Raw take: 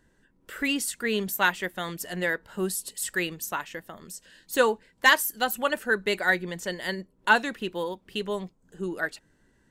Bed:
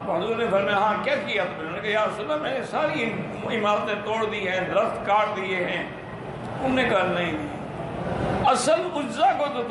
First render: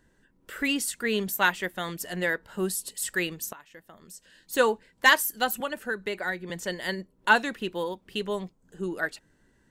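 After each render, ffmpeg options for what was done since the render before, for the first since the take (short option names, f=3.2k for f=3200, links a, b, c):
-filter_complex "[0:a]asettb=1/sr,asplit=3[a][b][c];[a]atrim=end=5.604[d];[b]atrim=start=5.6:end=6.5,asetpts=PTS-STARTPTS,afade=t=in:d=0.004:c=qsin,afade=t=out:st=0.896:d=0.004:c=qsin,acrossover=split=320|2400[e][f][g];[e]acompressor=threshold=-40dB:ratio=4[h];[f]acompressor=threshold=-30dB:ratio=4[i];[g]acompressor=threshold=-43dB:ratio=4[j];[h][i][j]amix=inputs=3:normalize=0[k];[c]atrim=start=6.496[l];[d][k]acrossfade=d=0.004:c1=hsin:c2=qsin[m];[m][l]acrossfade=d=0.004:c1=qsin:c2=hsin,asplit=2[n][o];[n]atrim=end=3.53,asetpts=PTS-STARTPTS,afade=t=out:st=3.526:d=0.004:c=hsin:silence=0.1[p];[o]atrim=start=3.53,asetpts=PTS-STARTPTS,afade=t=in:d=1.18:silence=0.1[q];[p][q]concat=n=2:v=0:a=1"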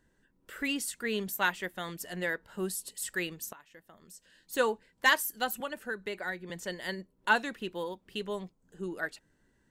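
-af "volume=-5.5dB"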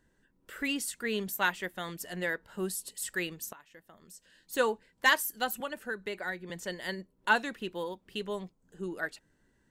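-af anull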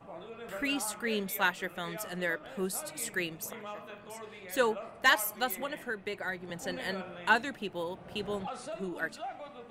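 -filter_complex "[1:a]volume=-20.5dB[a];[0:a][a]amix=inputs=2:normalize=0"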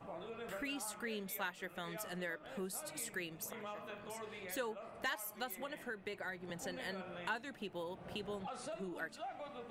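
-af "acompressor=threshold=-44dB:ratio=2.5"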